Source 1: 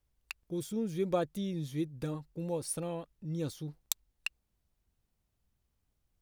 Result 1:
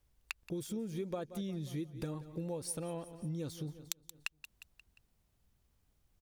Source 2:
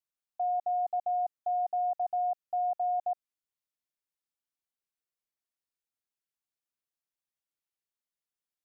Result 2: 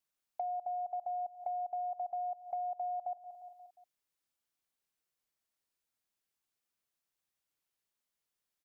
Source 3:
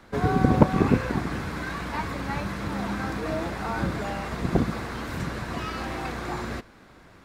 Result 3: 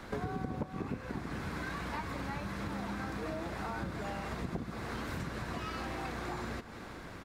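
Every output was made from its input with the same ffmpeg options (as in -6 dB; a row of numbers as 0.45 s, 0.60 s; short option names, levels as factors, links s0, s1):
-af "aecho=1:1:177|354|531|708:0.112|0.0595|0.0315|0.0167,acompressor=threshold=0.00891:ratio=6,volume=1.68"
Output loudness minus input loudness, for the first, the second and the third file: -4.5 LU, -7.0 LU, -12.0 LU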